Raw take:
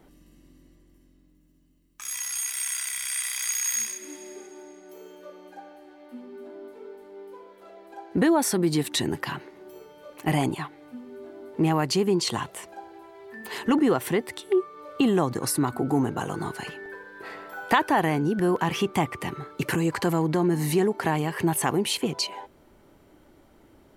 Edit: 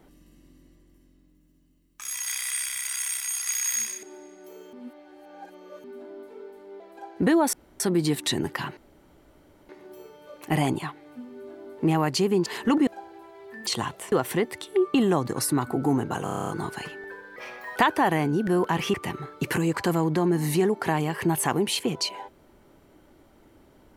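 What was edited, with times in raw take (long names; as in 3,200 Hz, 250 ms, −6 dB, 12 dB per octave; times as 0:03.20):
0:02.27–0:03.47: reverse
0:04.03–0:04.48: remove
0:05.18–0:06.29: reverse
0:07.25–0:07.75: remove
0:08.48: splice in room tone 0.27 s
0:09.45: splice in room tone 0.92 s
0:12.22–0:12.67: swap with 0:13.47–0:13.88
0:14.70–0:15.00: remove
0:16.30: stutter 0.03 s, 9 plays
0:17.18–0:17.68: play speed 125%
0:18.86–0:19.12: remove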